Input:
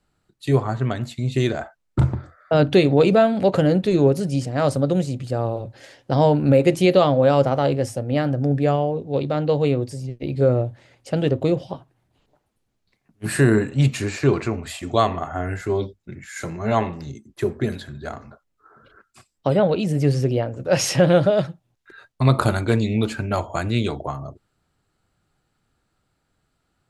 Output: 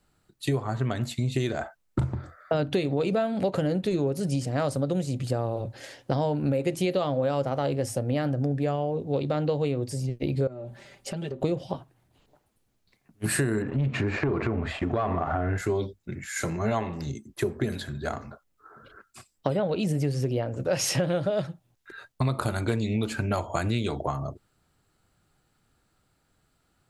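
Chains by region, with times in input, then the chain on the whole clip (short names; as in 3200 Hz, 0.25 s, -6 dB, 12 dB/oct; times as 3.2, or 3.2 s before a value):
10.47–11.43 comb 5.1 ms, depth 87% + compressor, threshold -32 dBFS
13.62–15.58 sample leveller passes 2 + LPF 1700 Hz + compressor 3:1, threshold -22 dBFS
whole clip: high shelf 9400 Hz +7.5 dB; compressor 6:1, threshold -24 dBFS; gain +1 dB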